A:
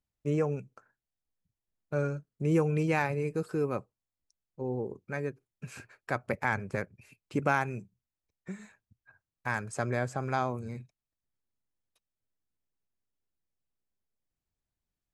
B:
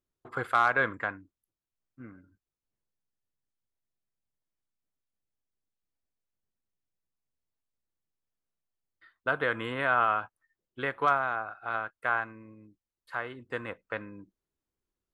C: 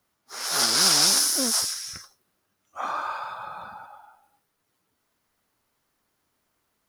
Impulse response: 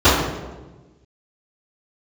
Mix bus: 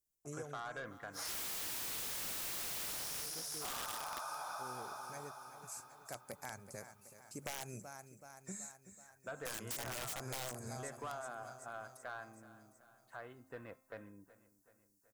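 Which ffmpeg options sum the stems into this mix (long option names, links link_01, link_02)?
-filter_complex "[0:a]aexciter=amount=9.6:drive=8.3:freq=4800,volume=-8dB,afade=type=in:start_time=7.42:duration=0.42:silence=0.316228,asplit=2[link_01][link_02];[link_02]volume=-13.5dB[link_03];[1:a]lowshelf=frequency=470:gain=6.5,bandreject=frequency=263.7:width_type=h:width=4,bandreject=frequency=527.4:width_type=h:width=4,bandreject=frequency=791.1:width_type=h:width=4,bandreject=frequency=1054.8:width_type=h:width=4,bandreject=frequency=1318.5:width_type=h:width=4,bandreject=frequency=1582.2:width_type=h:width=4,bandreject=frequency=1845.9:width_type=h:width=4,bandreject=frequency=2109.6:width_type=h:width=4,bandreject=frequency=2373.3:width_type=h:width=4,bandreject=frequency=2637:width_type=h:width=4,bandreject=frequency=2900.7:width_type=h:width=4,bandreject=frequency=3164.4:width_type=h:width=4,bandreject=frequency=3428.1:width_type=h:width=4,bandreject=frequency=3691.8:width_type=h:width=4,bandreject=frequency=3955.5:width_type=h:width=4,bandreject=frequency=4219.2:width_type=h:width=4,bandreject=frequency=4482.9:width_type=h:width=4,bandreject=frequency=4746.6:width_type=h:width=4,bandreject=frequency=5010.3:width_type=h:width=4,bandreject=frequency=5274:width_type=h:width=4,bandreject=frequency=5537.7:width_type=h:width=4,bandreject=frequency=5801.4:width_type=h:width=4,bandreject=frequency=6065.1:width_type=h:width=4,bandreject=frequency=6328.8:width_type=h:width=4,bandreject=frequency=6592.5:width_type=h:width=4,bandreject=frequency=6856.2:width_type=h:width=4,bandreject=frequency=7119.9:width_type=h:width=4,bandreject=frequency=7383.6:width_type=h:width=4,bandreject=frequency=7647.3:width_type=h:width=4,bandreject=frequency=7911:width_type=h:width=4,bandreject=frequency=8174.7:width_type=h:width=4,bandreject=frequency=8438.4:width_type=h:width=4,bandreject=frequency=8702.1:width_type=h:width=4,bandreject=frequency=8965.8:width_type=h:width=4,bandreject=frequency=9229.5:width_type=h:width=4,bandreject=frequency=9493.2:width_type=h:width=4,bandreject=frequency=9756.9:width_type=h:width=4,bandreject=frequency=10020.6:width_type=h:width=4,bandreject=frequency=10284.3:width_type=h:width=4,asoftclip=type=tanh:threshold=-21dB,volume=-16dB,asplit=2[link_04][link_05];[link_05]volume=-18.5dB[link_06];[2:a]highpass=600,highshelf=frequency=8900:gain=11.5,flanger=delay=4.3:depth=4.9:regen=43:speed=0.49:shape=triangular,adelay=850,volume=-3.5dB,asplit=2[link_07][link_08];[link_08]volume=-6dB[link_09];[link_03][link_06][link_09]amix=inputs=3:normalize=0,aecho=0:1:378|756|1134|1512|1890|2268|2646|3024|3402:1|0.58|0.336|0.195|0.113|0.0656|0.0381|0.0221|0.0128[link_10];[link_01][link_04][link_07][link_10]amix=inputs=4:normalize=0,equalizer=frequency=670:width_type=o:width=0.42:gain=7.5,aeval=exprs='(mod(29.9*val(0)+1,2)-1)/29.9':channel_layout=same,acompressor=threshold=-40dB:ratio=6"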